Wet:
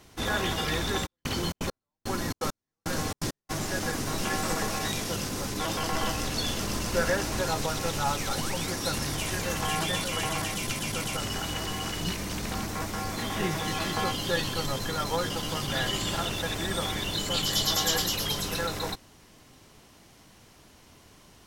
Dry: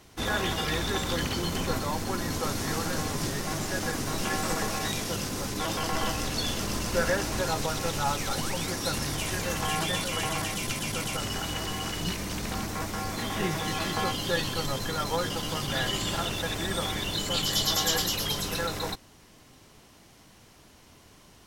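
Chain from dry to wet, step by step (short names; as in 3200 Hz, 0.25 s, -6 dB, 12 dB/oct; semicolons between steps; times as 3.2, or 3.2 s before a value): 1.05–3.49 step gate "x....xxx." 168 bpm -60 dB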